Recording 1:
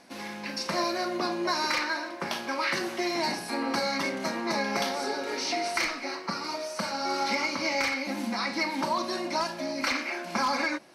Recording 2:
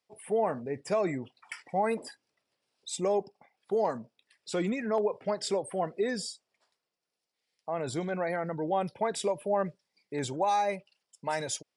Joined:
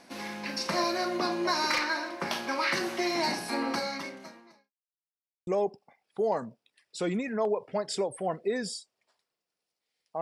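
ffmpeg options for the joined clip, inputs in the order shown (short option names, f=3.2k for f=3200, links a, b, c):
-filter_complex "[0:a]apad=whole_dur=10.21,atrim=end=10.21,asplit=2[a][b];[a]atrim=end=4.72,asetpts=PTS-STARTPTS,afade=t=out:st=3.6:d=1.12:c=qua[c];[b]atrim=start=4.72:end=5.47,asetpts=PTS-STARTPTS,volume=0[d];[1:a]atrim=start=3:end=7.74,asetpts=PTS-STARTPTS,afade=t=in:d=0.004:c=hsin[e];[c][d][e]concat=n=3:v=0:a=1"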